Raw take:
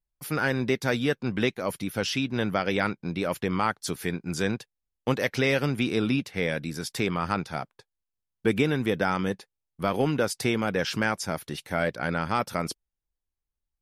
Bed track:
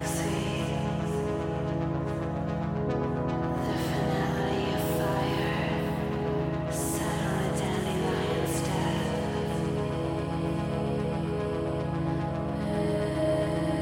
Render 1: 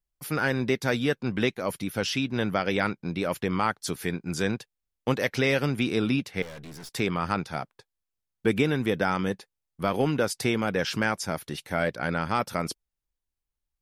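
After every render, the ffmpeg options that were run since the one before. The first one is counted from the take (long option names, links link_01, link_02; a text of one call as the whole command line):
ffmpeg -i in.wav -filter_complex "[0:a]asettb=1/sr,asplit=3[link_01][link_02][link_03];[link_01]atrim=end=6.424[link_04];[link_02]atrim=start=6.42:end=6.92,asetpts=PTS-STARTPTS,afade=type=in:duration=0.004:curve=qsin,afade=type=out:start_time=0.496:duration=0.004:curve=qsin,aeval=exprs='(tanh(100*val(0)+0.55)-tanh(0.55))/100':channel_layout=same[link_05];[link_03]atrim=start=6.916[link_06];[link_04][link_05]acrossfade=duration=0.004:curve1=hsin:curve2=qsin[link_07];[link_07][link_06]acrossfade=duration=0.004:curve1=qsin:curve2=hsin" out.wav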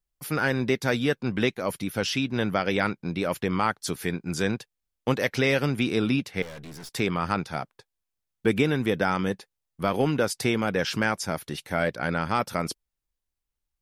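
ffmpeg -i in.wav -af "volume=1dB" out.wav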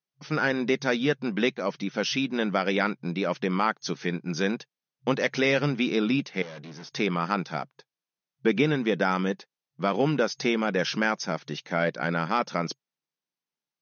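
ffmpeg -i in.wav -af "afftfilt=real='re*between(b*sr/4096,130,6500)':imag='im*between(b*sr/4096,130,6500)':win_size=4096:overlap=0.75" out.wav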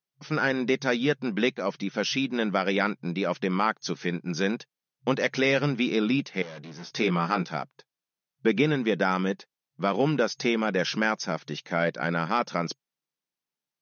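ffmpeg -i in.wav -filter_complex "[0:a]asettb=1/sr,asplit=3[link_01][link_02][link_03];[link_01]atrim=end=6.774[link_04];[link_02]atrim=start=6.77:end=7.49,asetpts=PTS-STARTPTS,afade=type=in:duration=0.004:curve=qsin,afade=type=out:start_time=0.716:duration=0.004:curve=qsin,asplit=2[link_05][link_06];[link_06]adelay=17,volume=-5dB[link_07];[link_05][link_07]amix=inputs=2:normalize=0,atrim=end_sample=31752[link_08];[link_03]atrim=start=7.486[link_09];[link_04][link_08]acrossfade=duration=0.004:curve1=hsin:curve2=qsin[link_10];[link_10][link_09]acrossfade=duration=0.004:curve1=qsin:curve2=hsin" out.wav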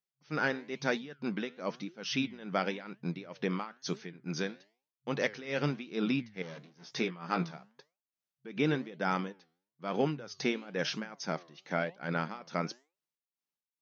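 ffmpeg -i in.wav -af "tremolo=f=2.3:d=0.89,flanger=delay=4.3:depth=8.3:regen=87:speed=1:shape=triangular" out.wav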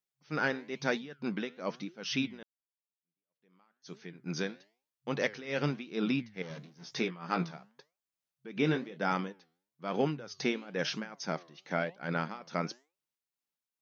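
ffmpeg -i in.wav -filter_complex "[0:a]asettb=1/sr,asplit=3[link_01][link_02][link_03];[link_01]atrim=end=6.504[link_04];[link_02]atrim=start=6.5:end=6.94,asetpts=PTS-STARTPTS,afade=type=in:duration=0.004:curve=qsin,afade=type=out:start_time=0.436:duration=0.004:curve=qsin,bass=frequency=250:gain=6,treble=frequency=4000:gain=4[link_05];[link_03]atrim=start=6.936[link_06];[link_04][link_05]acrossfade=duration=0.004:curve1=hsin:curve2=qsin[link_07];[link_07][link_06]acrossfade=duration=0.004:curve1=qsin:curve2=hsin,asettb=1/sr,asplit=3[link_08][link_09][link_10];[link_08]atrim=end=8.584[link_11];[link_09]atrim=start=8.58:end=9.13,asetpts=PTS-STARTPTS,afade=type=in:duration=0.004:curve=qsin,afade=type=out:start_time=0.546:duration=0.004:curve=qsin,asplit=2[link_12][link_13];[link_13]adelay=25,volume=-9dB[link_14];[link_12][link_14]amix=inputs=2:normalize=0,atrim=end_sample=24255[link_15];[link_10]atrim=start=9.126[link_16];[link_11][link_15]acrossfade=duration=0.004:curve1=hsin:curve2=qsin[link_17];[link_17][link_16]acrossfade=duration=0.004:curve1=qsin:curve2=hsin,asplit=2[link_18][link_19];[link_18]atrim=end=2.43,asetpts=PTS-STARTPTS,afade=type=out:start_time=2.426:duration=0.004:curve=hsin[link_20];[link_19]atrim=start=2.43,asetpts=PTS-STARTPTS,afade=type=in:duration=1.67:curve=exp[link_21];[link_20][link_21]concat=n=2:v=0:a=1" out.wav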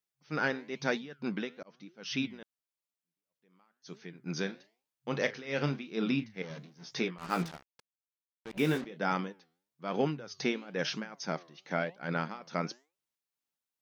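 ffmpeg -i in.wav -filter_complex "[0:a]asettb=1/sr,asplit=3[link_01][link_02][link_03];[link_01]atrim=end=4.394[link_04];[link_02]atrim=start=4.39:end=6.45,asetpts=PTS-STARTPTS,afade=type=in:duration=0.004:curve=qsin,afade=type=out:start_time=2.056:duration=0.004:curve=qsin,asplit=2[link_05][link_06];[link_06]adelay=36,volume=-12dB[link_07];[link_05][link_07]amix=inputs=2:normalize=0,atrim=end_sample=90846[link_08];[link_03]atrim=start=6.446[link_09];[link_04][link_08]acrossfade=duration=0.004:curve1=hsin:curve2=qsin[link_10];[link_10][link_09]acrossfade=duration=0.004:curve1=qsin:curve2=hsin,asettb=1/sr,asplit=3[link_11][link_12][link_13];[link_11]atrim=end=7.184[link_14];[link_12]atrim=start=7.18:end=8.85,asetpts=PTS-STARTPTS,afade=type=in:duration=0.004:curve=qsin,afade=type=out:start_time=1.666:duration=0.004:curve=qsin,acrusher=bits=6:mix=0:aa=0.5[link_15];[link_13]atrim=start=8.846[link_16];[link_14][link_15]acrossfade=duration=0.004:curve1=hsin:curve2=qsin[link_17];[link_17][link_16]acrossfade=duration=0.004:curve1=qsin:curve2=hsin,asplit=2[link_18][link_19];[link_18]atrim=end=1.63,asetpts=PTS-STARTPTS,afade=type=out:start_time=1.626:duration=0.004:curve=hsin[link_20];[link_19]atrim=start=1.63,asetpts=PTS-STARTPTS,afade=type=in:duration=0.64[link_21];[link_20][link_21]concat=n=2:v=0:a=1" out.wav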